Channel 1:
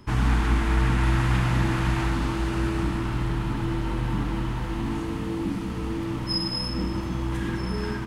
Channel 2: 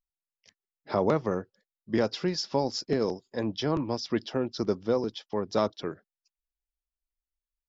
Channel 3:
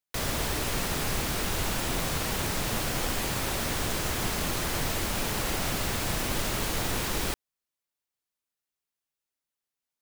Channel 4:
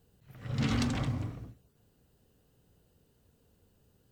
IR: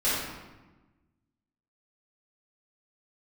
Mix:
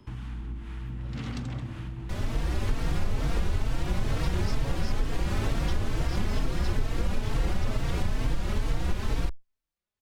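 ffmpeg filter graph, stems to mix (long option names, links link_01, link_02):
-filter_complex "[0:a]equalizer=frequency=3100:width_type=o:width=0.77:gain=5.5,acrossover=split=280[link_01][link_02];[link_02]acompressor=threshold=-48dB:ratio=2[link_03];[link_01][link_03]amix=inputs=2:normalize=0,acrossover=split=880[link_04][link_05];[link_04]aeval=exprs='val(0)*(1-0.5/2+0.5/2*cos(2*PI*2*n/s))':channel_layout=same[link_06];[link_05]aeval=exprs='val(0)*(1-0.5/2-0.5/2*cos(2*PI*2*n/s))':channel_layout=same[link_07];[link_06][link_07]amix=inputs=2:normalize=0,volume=-4.5dB[link_08];[1:a]adelay=2100,volume=-2.5dB[link_09];[2:a]aemphasis=mode=reproduction:type=bsi,dynaudnorm=framelen=140:gausssize=9:maxgain=12dB,asplit=2[link_10][link_11];[link_11]adelay=3.9,afreqshift=2.2[link_12];[link_10][link_12]amix=inputs=2:normalize=1,adelay=1950,volume=-4.5dB[link_13];[3:a]highshelf=frequency=8500:gain=-6.5,adelay=550,volume=-7dB[link_14];[link_08][link_09]amix=inputs=2:normalize=0,acompressor=threshold=-34dB:ratio=4,volume=0dB[link_15];[link_13][link_14][link_15]amix=inputs=3:normalize=0,acompressor=threshold=-22dB:ratio=4"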